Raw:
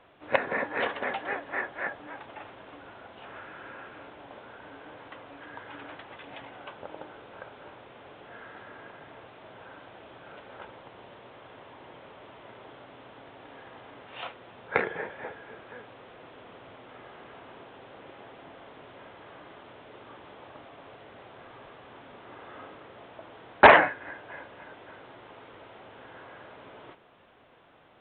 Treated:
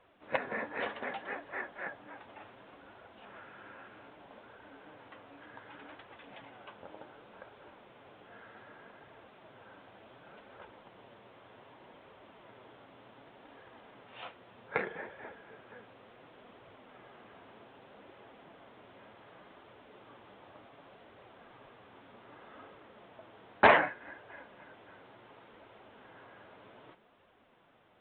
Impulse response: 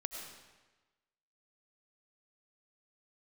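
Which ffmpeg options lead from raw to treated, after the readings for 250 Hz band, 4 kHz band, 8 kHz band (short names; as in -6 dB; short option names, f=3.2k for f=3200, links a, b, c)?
-6.0 dB, -7.5 dB, n/a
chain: -af "equalizer=f=210:w=4.4:g=5,flanger=delay=1.6:depth=9.8:regen=-38:speed=0.66:shape=triangular,volume=-3.5dB"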